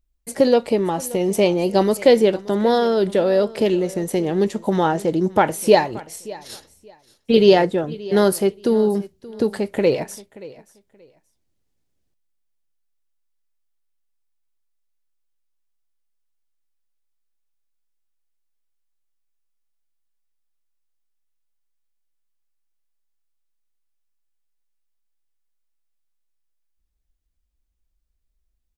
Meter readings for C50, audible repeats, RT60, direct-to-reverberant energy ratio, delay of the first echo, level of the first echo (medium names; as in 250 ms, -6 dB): no reverb, 2, no reverb, no reverb, 578 ms, -19.5 dB